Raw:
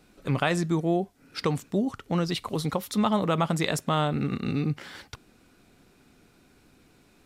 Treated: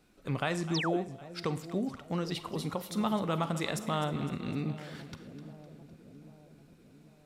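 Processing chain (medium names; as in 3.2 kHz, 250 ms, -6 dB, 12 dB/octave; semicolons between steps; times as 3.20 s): two-band feedback delay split 670 Hz, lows 794 ms, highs 254 ms, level -13 dB; Schroeder reverb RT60 0.54 s, combs from 33 ms, DRR 13 dB; painted sound fall, 0.74–0.97 s, 270–6500 Hz -27 dBFS; trim -7 dB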